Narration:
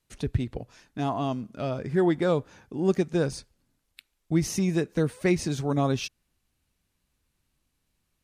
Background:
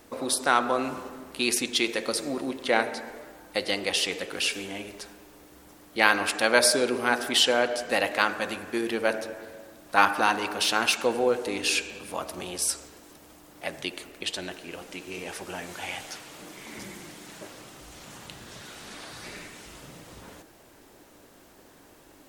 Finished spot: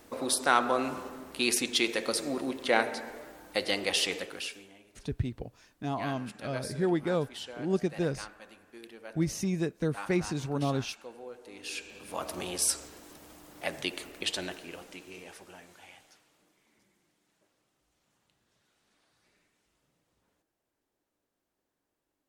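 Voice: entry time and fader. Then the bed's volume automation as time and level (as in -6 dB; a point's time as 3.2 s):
4.85 s, -5.0 dB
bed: 4.16 s -2 dB
4.79 s -21 dB
11.37 s -21 dB
12.3 s -0.5 dB
14.41 s -0.5 dB
16.86 s -30 dB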